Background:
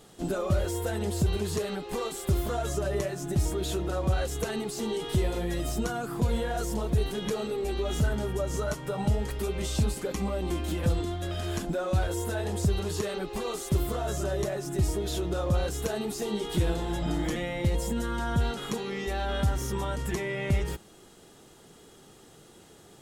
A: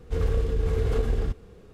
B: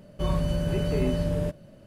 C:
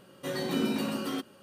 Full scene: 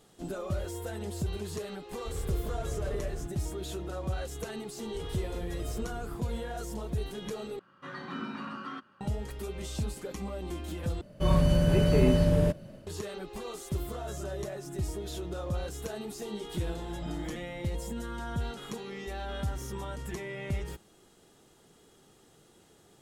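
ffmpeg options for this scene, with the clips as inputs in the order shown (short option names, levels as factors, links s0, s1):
-filter_complex "[1:a]asplit=2[s0][s1];[0:a]volume=0.447[s2];[s1]acompressor=threshold=0.0501:ratio=6:attack=3.2:release=140:knee=1:detection=peak[s3];[3:a]firequalizer=gain_entry='entry(180,0);entry(480,-8);entry(1200,12);entry(2200,0);entry(13000,-30)':delay=0.05:min_phase=1[s4];[2:a]dynaudnorm=f=160:g=3:m=1.78[s5];[s2]asplit=3[s6][s7][s8];[s6]atrim=end=7.594[s9];[s4]atrim=end=1.42,asetpts=PTS-STARTPTS,volume=0.398[s10];[s7]atrim=start=9.006:end=11.014[s11];[s5]atrim=end=1.86,asetpts=PTS-STARTPTS,volume=0.794[s12];[s8]atrim=start=12.866[s13];[s0]atrim=end=1.73,asetpts=PTS-STARTPTS,volume=0.266,afade=t=in:d=0.004:c=hsin,afade=t=out:st=1.726:d=0.004:c=hsin,adelay=1950[s14];[s3]atrim=end=1.73,asetpts=PTS-STARTPTS,volume=0.335,afade=t=in:d=0.004:c=hsin,afade=t=out:st=1.726:d=0.004:c=hsin,adelay=4840[s15];[s9][s10]acrossfade=d=0.004:c1=hsin:c2=hsin[s16];[s16][s11]acrossfade=d=0.004:c1=hsin:c2=hsin[s17];[s17][s12]acrossfade=d=0.004:c1=hsin:c2=hsin[s18];[s18][s13]acrossfade=d=0.004:c1=hsin:c2=hsin[s19];[s19][s14][s15]amix=inputs=3:normalize=0"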